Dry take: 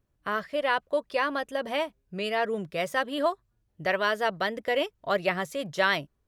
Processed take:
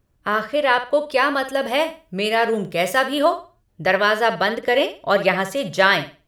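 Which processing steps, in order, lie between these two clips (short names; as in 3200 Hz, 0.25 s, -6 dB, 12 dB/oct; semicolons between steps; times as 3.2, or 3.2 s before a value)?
1.11–3.25 high shelf 7300 Hz +7 dB; flutter echo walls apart 10.1 m, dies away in 0.32 s; gain +8.5 dB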